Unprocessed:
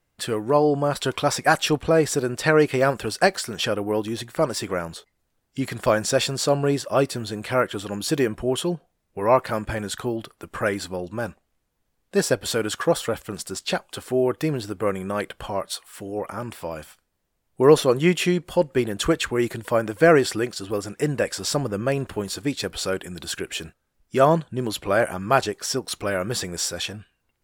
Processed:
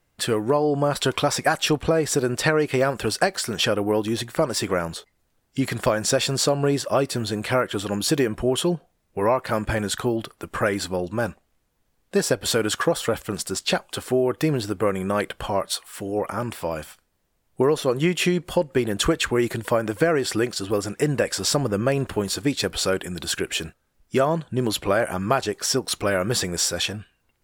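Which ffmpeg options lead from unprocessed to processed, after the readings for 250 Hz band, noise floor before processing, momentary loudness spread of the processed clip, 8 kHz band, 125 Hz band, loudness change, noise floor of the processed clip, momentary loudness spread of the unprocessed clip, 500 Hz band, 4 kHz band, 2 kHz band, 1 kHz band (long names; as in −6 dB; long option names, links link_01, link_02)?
+0.5 dB, −74 dBFS, 6 LU, +3.0 dB, +1.0 dB, 0.0 dB, −70 dBFS, 12 LU, −1.0 dB, +3.0 dB, 0.0 dB, −1.5 dB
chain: -af "acompressor=threshold=-20dB:ratio=10,volume=4dB"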